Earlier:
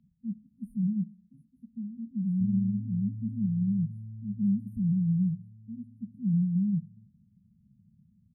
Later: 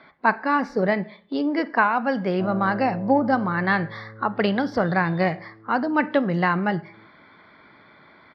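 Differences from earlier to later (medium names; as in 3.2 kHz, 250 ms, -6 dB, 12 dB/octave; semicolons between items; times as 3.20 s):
background -3.5 dB; master: remove brick-wall FIR band-stop 230–8800 Hz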